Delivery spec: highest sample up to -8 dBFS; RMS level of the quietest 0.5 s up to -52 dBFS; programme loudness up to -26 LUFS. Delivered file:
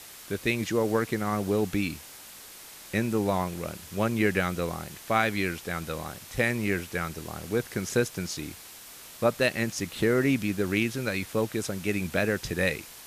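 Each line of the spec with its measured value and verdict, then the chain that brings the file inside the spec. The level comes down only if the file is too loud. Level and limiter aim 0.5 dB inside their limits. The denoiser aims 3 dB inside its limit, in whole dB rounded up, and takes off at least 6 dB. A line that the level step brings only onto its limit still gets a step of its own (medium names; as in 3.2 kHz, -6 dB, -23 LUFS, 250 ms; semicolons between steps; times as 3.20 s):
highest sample -9.5 dBFS: pass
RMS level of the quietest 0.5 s -47 dBFS: fail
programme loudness -28.5 LUFS: pass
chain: noise reduction 8 dB, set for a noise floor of -47 dBFS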